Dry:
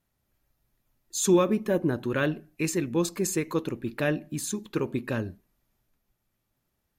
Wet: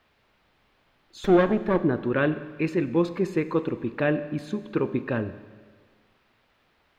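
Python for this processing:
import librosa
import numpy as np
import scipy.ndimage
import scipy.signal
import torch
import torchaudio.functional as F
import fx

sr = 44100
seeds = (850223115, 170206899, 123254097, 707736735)

p1 = fx.lower_of_two(x, sr, delay_ms=0.53, at=(1.24, 1.84))
p2 = fx.low_shelf(p1, sr, hz=170.0, db=-6.0)
p3 = fx.quant_dither(p2, sr, seeds[0], bits=8, dither='triangular')
p4 = p2 + (p3 * librosa.db_to_amplitude(-11.0))
p5 = fx.air_absorb(p4, sr, metres=380.0)
p6 = fx.rev_schroeder(p5, sr, rt60_s=1.6, comb_ms=29, drr_db=13.0)
y = p6 * librosa.db_to_amplitude(3.0)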